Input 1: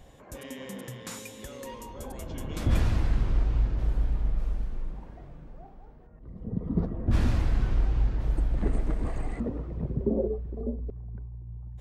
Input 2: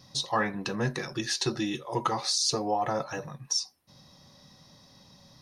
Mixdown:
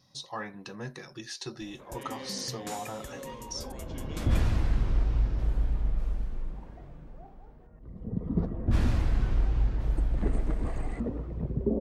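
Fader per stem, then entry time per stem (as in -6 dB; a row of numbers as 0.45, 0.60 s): -1.0, -10.0 dB; 1.60, 0.00 s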